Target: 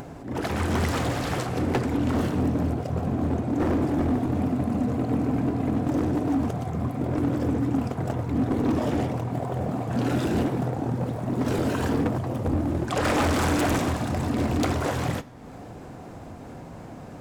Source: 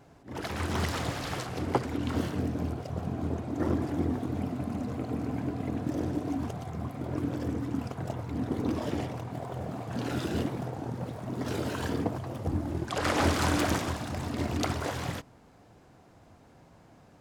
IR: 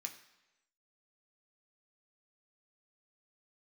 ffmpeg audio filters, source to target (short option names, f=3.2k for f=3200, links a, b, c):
-filter_complex "[0:a]tiltshelf=f=1.2k:g=4.5,asoftclip=type=hard:threshold=-24.5dB,asplit=2[a][b];[1:a]atrim=start_sample=2205,highshelf=f=7.7k:g=8[c];[b][c]afir=irnorm=-1:irlink=0,volume=-5dB[d];[a][d]amix=inputs=2:normalize=0,acompressor=mode=upward:threshold=-35dB:ratio=2.5,volume=4dB"